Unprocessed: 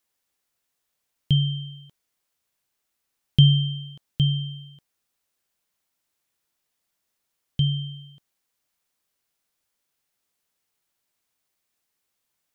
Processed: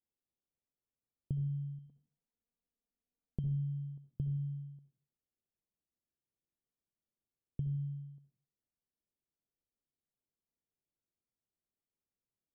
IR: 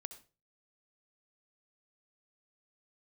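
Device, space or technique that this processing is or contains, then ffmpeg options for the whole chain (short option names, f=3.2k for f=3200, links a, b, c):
television next door: -filter_complex "[0:a]asettb=1/sr,asplit=3[a][b][c];[a]atrim=end=1.784[d];[b]atrim=start=1.78:end=3.44,asetpts=PTS-STARTPTS,afade=t=in:d=0.004:c=qsin,afade=t=out:st=1.656:d=0.004:c=qsin,aecho=1:1:4.2:0.82,atrim=end_sample=73206[e];[c]atrim=start=3.436[f];[d][e]acrossfade=d=0.004:c1=hsin:c2=qsin[g];[g][f]acrossfade=d=0.004:c1=qsin:c2=hsin,acompressor=threshold=-28dB:ratio=4,lowpass=400[h];[1:a]atrim=start_sample=2205[i];[h][i]afir=irnorm=-1:irlink=0,volume=-2.5dB"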